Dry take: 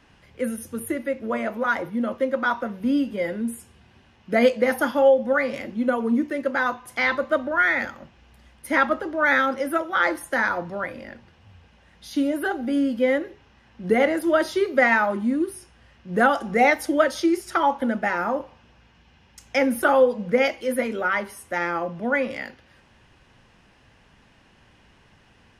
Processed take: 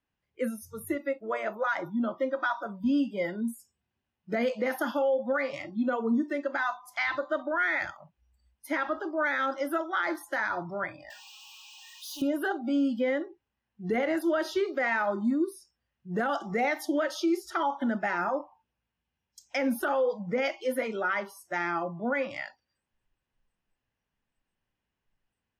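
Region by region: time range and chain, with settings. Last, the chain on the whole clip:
11.1–12.22 differentiator + power-law curve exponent 0.35
whole clip: spectral noise reduction 26 dB; dynamic EQ 9200 Hz, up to -7 dB, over -55 dBFS, Q 2.2; limiter -16 dBFS; gain -3.5 dB

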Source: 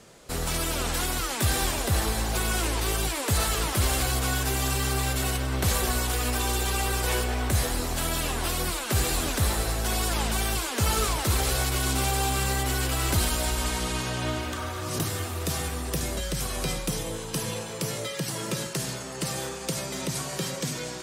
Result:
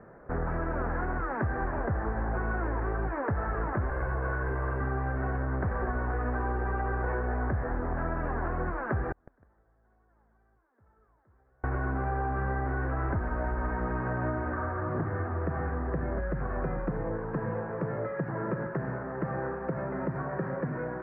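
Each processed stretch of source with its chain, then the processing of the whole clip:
3.9–4.81 minimum comb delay 1.9 ms + bell 8600 Hz +15 dB 0.46 oct
9.12–11.64 flipped gate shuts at -26 dBFS, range -41 dB + lo-fi delay 0.154 s, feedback 35%, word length 9-bit, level -7 dB
whole clip: elliptic low-pass 1700 Hz, stop band 50 dB; compressor, threshold -29 dBFS; gain +2.5 dB

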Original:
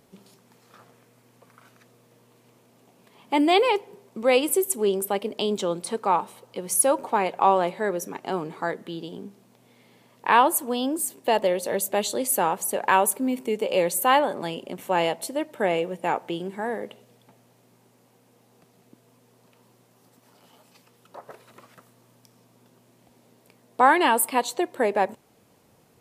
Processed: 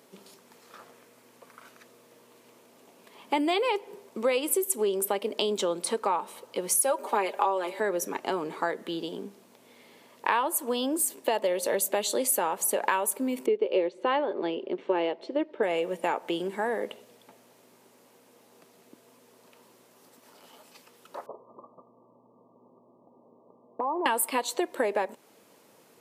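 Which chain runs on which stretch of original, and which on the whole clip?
6.81–7.8 steep high-pass 220 Hz + high shelf 9500 Hz +6.5 dB + comb 5 ms, depth 68%
13.46–15.63 LPF 4100 Hz 24 dB/oct + bell 380 Hz +13 dB 0.75 oct + upward expander, over -28 dBFS
21.26–24.06 Chebyshev low-pass 1200 Hz, order 10 + compressor, threshold -29 dBFS
whole clip: compressor 5:1, threshold -26 dBFS; HPF 280 Hz 12 dB/oct; notch 750 Hz, Q 12; gain +3.5 dB

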